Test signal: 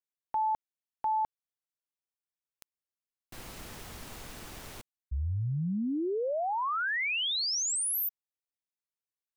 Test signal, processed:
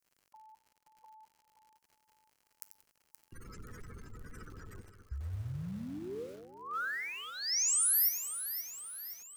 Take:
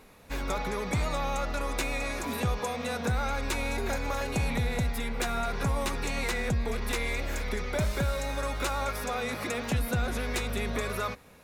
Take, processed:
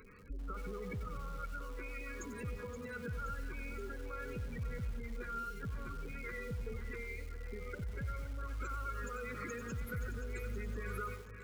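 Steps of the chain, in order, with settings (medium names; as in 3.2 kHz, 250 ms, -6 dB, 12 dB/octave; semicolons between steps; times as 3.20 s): in parallel at -9.5 dB: sine folder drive 4 dB, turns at -21 dBFS; on the sum: feedback comb 99 Hz, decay 0.58 s, harmonics all, mix 50%; compression 6:1, threshold -38 dBFS; dynamic bell 3.1 kHz, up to -4 dB, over -60 dBFS, Q 1.1; spectral gate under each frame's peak -15 dB strong; FFT filter 110 Hz 0 dB, 330 Hz -4 dB, 470 Hz 0 dB, 720 Hz -29 dB, 1.3 kHz +5 dB, 1.9 kHz +3 dB, 3.8 kHz -3 dB, 5.3 kHz +9 dB, 15 kHz +12 dB; on a send: two-band feedback delay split 560 Hz, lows 212 ms, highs 524 ms, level -10.5 dB; on the sum: crackle 110 per s -53 dBFS; band-stop 3.6 kHz, Q 6.3; bit-crushed delay 91 ms, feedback 35%, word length 8-bit, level -10 dB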